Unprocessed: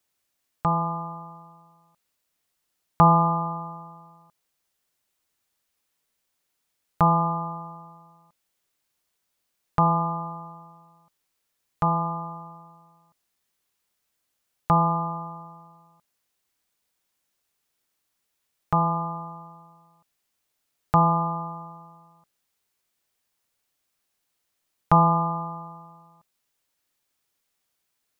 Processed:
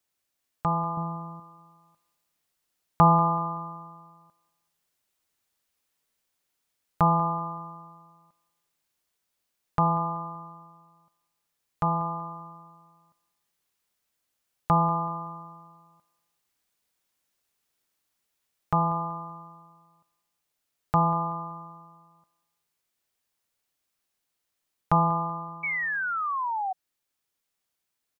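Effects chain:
0:00.97–0:01.40: low-shelf EQ 430 Hz +9 dB
repeating echo 190 ms, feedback 39%, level −21 dB
0:25.63–0:26.73: sound drawn into the spectrogram fall 740–2,300 Hz −23 dBFS
speech leveller 2 s
level −5.5 dB

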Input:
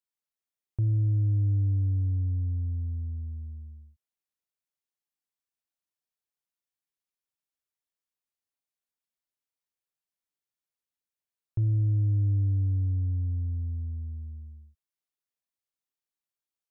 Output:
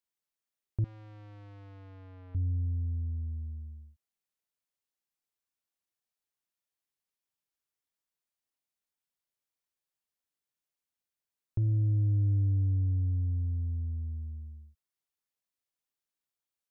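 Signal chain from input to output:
dynamic equaliser 140 Hz, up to −5 dB, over −41 dBFS, Q 2
0:00.84–0:02.35: tube saturation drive 49 dB, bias 0.3

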